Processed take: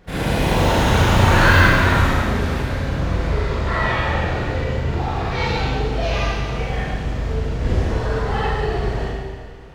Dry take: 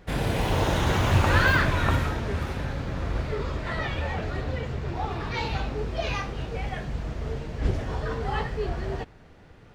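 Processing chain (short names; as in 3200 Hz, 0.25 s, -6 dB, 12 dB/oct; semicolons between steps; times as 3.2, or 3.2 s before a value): 3.66–4.09 bell 1100 Hz +6.5 dB 0.97 oct; reverb RT60 1.6 s, pre-delay 34 ms, DRR -7.5 dB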